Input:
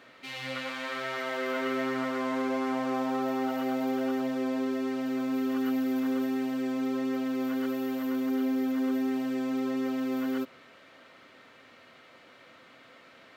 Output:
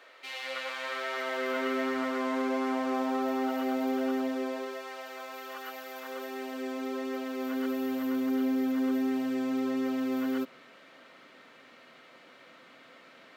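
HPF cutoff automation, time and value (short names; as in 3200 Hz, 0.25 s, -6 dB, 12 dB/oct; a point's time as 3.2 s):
HPF 24 dB/oct
0.76 s 400 Hz
1.71 s 200 Hz
4.22 s 200 Hz
4.86 s 570 Hz
5.94 s 570 Hz
6.63 s 310 Hz
7.37 s 310 Hz
8.02 s 140 Hz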